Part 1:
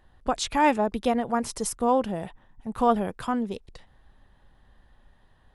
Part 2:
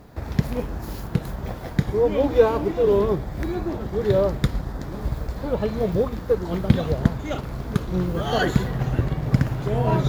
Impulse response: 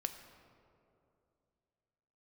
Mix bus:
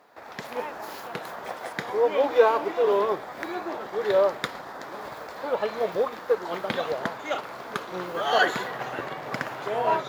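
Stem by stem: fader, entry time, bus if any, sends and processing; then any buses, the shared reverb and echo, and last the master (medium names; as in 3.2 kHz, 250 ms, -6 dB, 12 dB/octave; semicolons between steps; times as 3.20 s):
-20.0 dB, 0.00 s, no send, none
-0.5 dB, 0.00 s, no send, none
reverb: none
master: high-pass 730 Hz 12 dB/octave; treble shelf 3.9 kHz -10 dB; level rider gain up to 6.5 dB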